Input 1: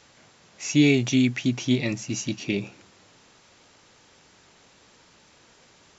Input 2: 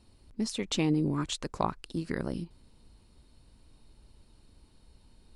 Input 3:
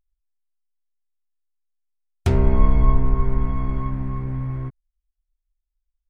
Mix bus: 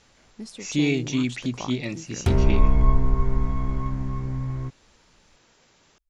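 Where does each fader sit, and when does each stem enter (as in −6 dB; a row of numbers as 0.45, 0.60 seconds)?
−4.0, −6.5, −2.0 decibels; 0.00, 0.00, 0.00 seconds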